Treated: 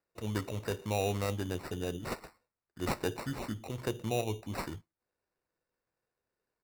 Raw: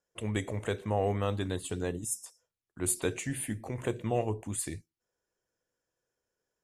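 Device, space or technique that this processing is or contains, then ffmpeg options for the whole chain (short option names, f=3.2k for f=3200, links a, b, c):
crushed at another speed: -af "asetrate=35280,aresample=44100,acrusher=samples=17:mix=1:aa=0.000001,asetrate=55125,aresample=44100,volume=-2.5dB"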